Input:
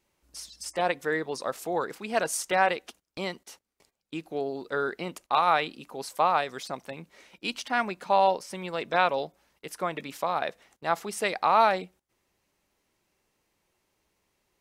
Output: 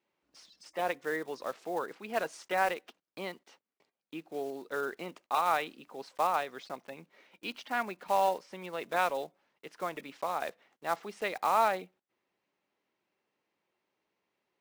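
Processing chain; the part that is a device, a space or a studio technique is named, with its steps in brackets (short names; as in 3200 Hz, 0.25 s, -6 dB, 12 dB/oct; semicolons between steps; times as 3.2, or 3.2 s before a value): early digital voice recorder (BPF 200–3500 Hz; block floating point 5-bit); gain -5.5 dB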